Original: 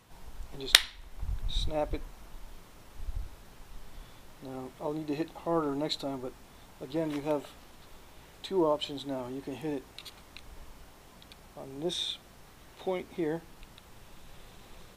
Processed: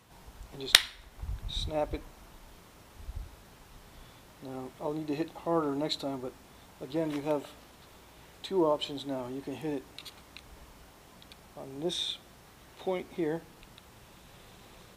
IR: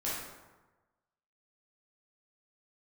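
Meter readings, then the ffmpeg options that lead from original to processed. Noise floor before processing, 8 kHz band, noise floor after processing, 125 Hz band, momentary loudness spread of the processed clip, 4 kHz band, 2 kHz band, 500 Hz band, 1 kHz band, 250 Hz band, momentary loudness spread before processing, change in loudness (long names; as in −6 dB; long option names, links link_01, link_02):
−55 dBFS, 0.0 dB, −56 dBFS, −0.5 dB, 19 LU, 0.0 dB, 0.0 dB, +0.5 dB, +0.5 dB, +0.5 dB, 22 LU, +0.5 dB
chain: -filter_complex "[0:a]highpass=48,asplit=2[link_01][link_02];[1:a]atrim=start_sample=2205[link_03];[link_02][link_03]afir=irnorm=-1:irlink=0,volume=-28dB[link_04];[link_01][link_04]amix=inputs=2:normalize=0"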